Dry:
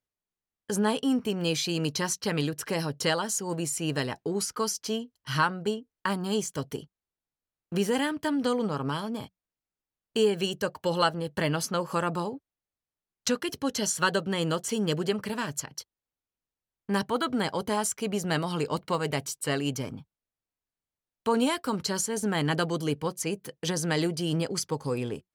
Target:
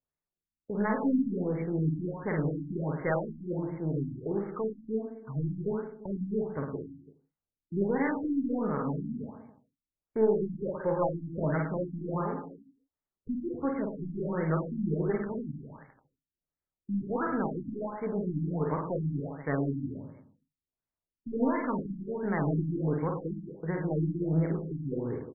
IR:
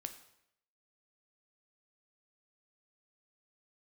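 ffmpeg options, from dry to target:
-filter_complex "[0:a]aeval=exprs='0.237*(cos(1*acos(clip(val(0)/0.237,-1,1)))-cos(1*PI/2))+0.0596*(cos(2*acos(clip(val(0)/0.237,-1,1)))-cos(2*PI/2))+0.00335*(cos(4*acos(clip(val(0)/0.237,-1,1)))-cos(4*PI/2))+0.00188*(cos(8*acos(clip(val(0)/0.237,-1,1)))-cos(8*PI/2))':c=same,aecho=1:1:50|107.5|173.6|249.7|337.1:0.631|0.398|0.251|0.158|0.1[a];[1:a]atrim=start_sample=2205,afade=t=out:st=0.22:d=0.01,atrim=end_sample=10143[b];[a][b]afir=irnorm=-1:irlink=0,afftfilt=real='re*lt(b*sr/1024,310*pow(2300/310,0.5+0.5*sin(2*PI*1.4*pts/sr)))':imag='im*lt(b*sr/1024,310*pow(2300/310,0.5+0.5*sin(2*PI*1.4*pts/sr)))':win_size=1024:overlap=0.75"

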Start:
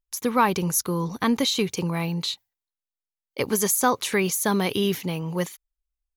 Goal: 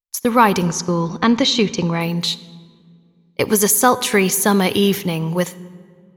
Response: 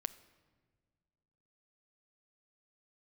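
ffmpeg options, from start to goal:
-filter_complex "[0:a]asettb=1/sr,asplit=3[a][b][c];[a]atrim=end=0.674[d];[b]atrim=start=0.67:end=2.01,asetpts=PTS-STARTPTS,afade=t=in:d=0.004:c=qsin,afade=t=out:st=1.336:d=0.004:c=qsin,lowpass=f=6.3k:w=0.5412,lowpass=f=6.3k:w=1.3066[e];[c]atrim=start=2.006[f];[d][e]acrossfade=d=0.004:c1=hsin:c2=qsin[g];[g][f]acrossfade=d=0.004:c1=qsin:c2=hsin,agate=range=-24dB:threshold=-32dB:ratio=16:detection=peak,asplit=2[h][i];[1:a]atrim=start_sample=2205,asetrate=31752,aresample=44100[j];[i][j]afir=irnorm=-1:irlink=0,volume=8.5dB[k];[h][k]amix=inputs=2:normalize=0,volume=-4dB"

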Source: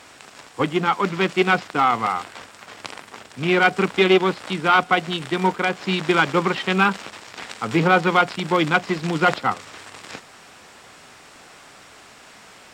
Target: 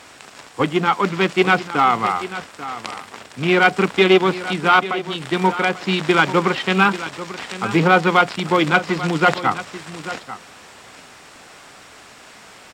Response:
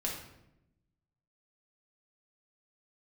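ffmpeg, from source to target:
-filter_complex "[0:a]asettb=1/sr,asplit=3[a][b][c];[a]atrim=end=4.794[d];[b]atrim=start=4.79:end=5.3,asetpts=PTS-STARTPTS,afade=t=in:d=0.004:c=qsin,afade=t=out:st=0.506:d=0.004:c=qsin,acompressor=threshold=-24dB:ratio=6[e];[c]atrim=start=5.296[f];[d][e]acrossfade=d=0.004:c1=hsin:c2=qsin[g];[g][f]acrossfade=d=0.004:c1=qsin:c2=hsin,aecho=1:1:840:0.2,volume=2.5dB"

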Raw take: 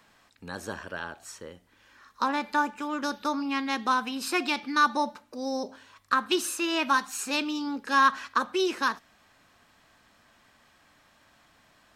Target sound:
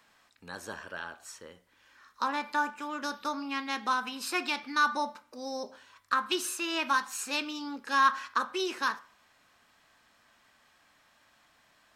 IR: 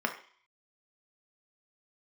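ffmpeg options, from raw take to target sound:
-filter_complex "[0:a]lowshelf=f=470:g=-7,asplit=2[a][b];[1:a]atrim=start_sample=2205,adelay=25[c];[b][c]afir=irnorm=-1:irlink=0,volume=-20dB[d];[a][d]amix=inputs=2:normalize=0,volume=-2.5dB"

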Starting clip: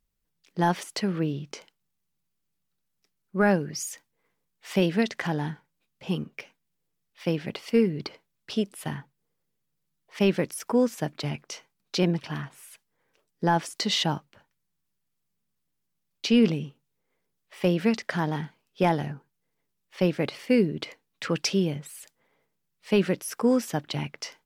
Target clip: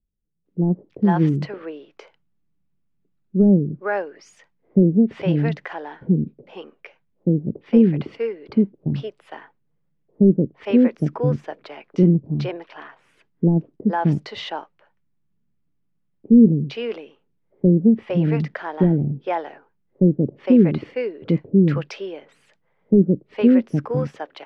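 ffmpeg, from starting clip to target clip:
-filter_complex "[0:a]lowpass=2.4k,acrossover=split=480[a][b];[a]dynaudnorm=f=110:g=11:m=11.5dB[c];[c][b]amix=inputs=2:normalize=0,acrossover=split=500[d][e];[e]adelay=460[f];[d][f]amix=inputs=2:normalize=0"

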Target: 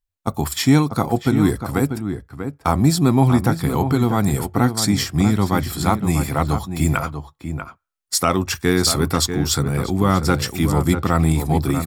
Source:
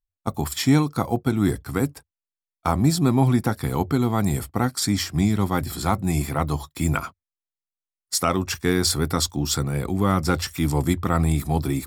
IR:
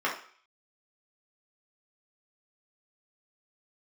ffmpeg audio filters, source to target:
-filter_complex "[0:a]asplit=2[a][b];[b]adelay=641.4,volume=-8dB,highshelf=f=4k:g=-14.4[c];[a][c]amix=inputs=2:normalize=0,asplit=2[d][e];[1:a]atrim=start_sample=2205,asetrate=57330,aresample=44100[f];[e][f]afir=irnorm=-1:irlink=0,volume=-34dB[g];[d][g]amix=inputs=2:normalize=0,volume=3.5dB"

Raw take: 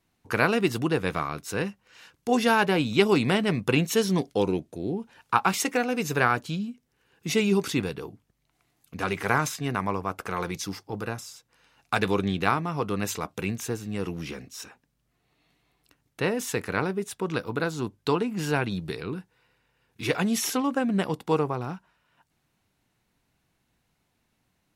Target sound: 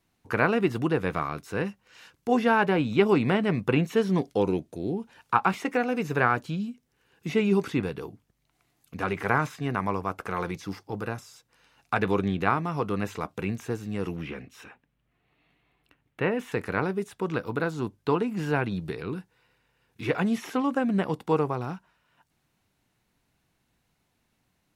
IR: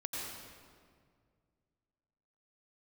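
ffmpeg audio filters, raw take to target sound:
-filter_complex "[0:a]asettb=1/sr,asplit=3[a][b][c];[a]atrim=end=14.164[d];[b]atrim=start=14.16:end=16.52,asetpts=PTS-STARTPTS,afade=t=in:d=0.004:c=qsin,afade=t=out:st=2.356:d=0.004:c=qsin,highshelf=f=3.8k:t=q:w=1.5:g=-10[e];[c]atrim=start=16.516[f];[d][e]acrossfade=d=0.004:c1=hsin:c2=qsin[g];[g][f]acrossfade=d=0.004:c1=qsin:c2=hsin,acrossover=split=2600[h][i];[i]acompressor=threshold=-48dB:ratio=4:attack=1:release=60[j];[h][j]amix=inputs=2:normalize=0"

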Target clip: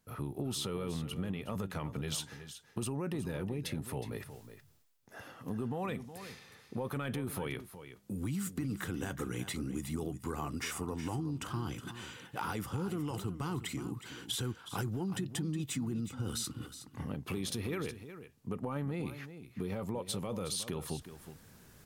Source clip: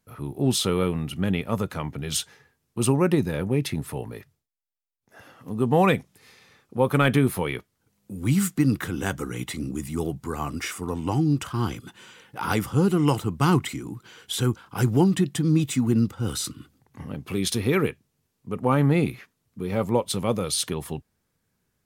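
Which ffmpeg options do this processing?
-af "equalizer=f=2.2k:w=8:g=-2.5,areverse,acompressor=mode=upward:threshold=-41dB:ratio=2.5,areverse,alimiter=limit=-18dB:level=0:latency=1:release=12,acompressor=threshold=-34dB:ratio=4,aecho=1:1:367:0.251,volume=-1dB"

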